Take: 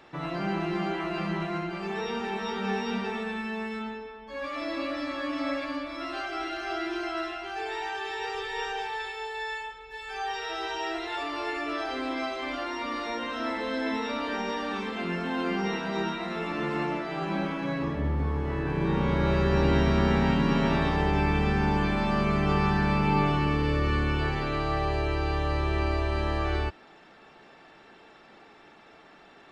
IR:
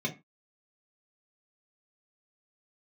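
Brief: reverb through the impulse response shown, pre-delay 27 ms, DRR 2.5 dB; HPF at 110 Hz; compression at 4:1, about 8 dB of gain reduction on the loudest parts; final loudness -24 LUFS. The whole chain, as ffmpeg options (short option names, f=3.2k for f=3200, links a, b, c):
-filter_complex "[0:a]highpass=110,acompressor=threshold=-30dB:ratio=4,asplit=2[a][b];[1:a]atrim=start_sample=2205,adelay=27[c];[b][c]afir=irnorm=-1:irlink=0,volume=-8.5dB[d];[a][d]amix=inputs=2:normalize=0,volume=5.5dB"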